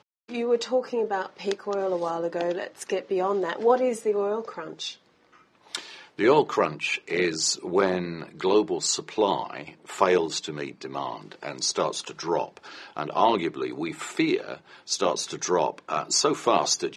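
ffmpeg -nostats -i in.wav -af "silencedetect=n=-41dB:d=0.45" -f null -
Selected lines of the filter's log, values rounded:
silence_start: 4.94
silence_end: 5.71 | silence_duration: 0.78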